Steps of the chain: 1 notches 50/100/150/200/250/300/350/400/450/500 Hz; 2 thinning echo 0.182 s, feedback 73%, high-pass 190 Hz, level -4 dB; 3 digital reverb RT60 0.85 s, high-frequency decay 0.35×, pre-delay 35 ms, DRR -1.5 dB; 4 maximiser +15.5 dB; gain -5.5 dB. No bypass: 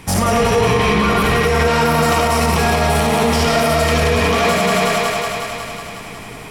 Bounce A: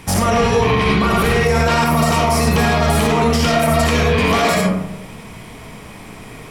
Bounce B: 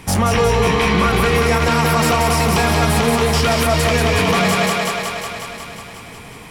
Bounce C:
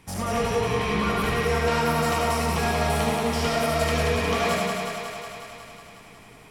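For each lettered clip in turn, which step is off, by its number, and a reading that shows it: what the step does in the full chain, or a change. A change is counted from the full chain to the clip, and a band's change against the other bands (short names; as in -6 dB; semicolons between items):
2, momentary loudness spread change -7 LU; 3, momentary loudness spread change +3 LU; 4, crest factor change +4.5 dB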